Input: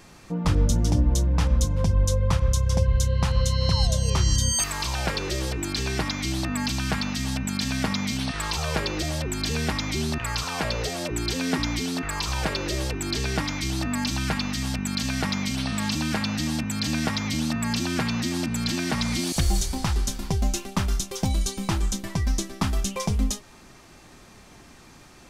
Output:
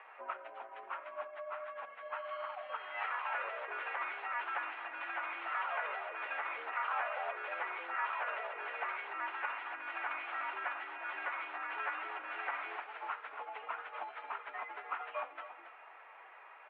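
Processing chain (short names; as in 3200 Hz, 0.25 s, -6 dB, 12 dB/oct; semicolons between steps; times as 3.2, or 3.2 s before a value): tracing distortion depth 0.31 ms; on a send at -16 dB: reverb RT60 1.4 s, pre-delay 9 ms; on the sum: dynamic EQ 1300 Hz, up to +6 dB, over -50 dBFS, Q 4.8; echo 0.417 s -13.5 dB; in parallel at +3 dB: compressor 20:1, threshold -32 dBFS, peak gain reduction 18.5 dB; on the sum: plain phase-vocoder stretch 0.66×; air absorption 330 m; limiter -18.5 dBFS, peak gain reduction 8.5 dB; mistuned SSB +79 Hz 600–2600 Hz; gain -2.5 dB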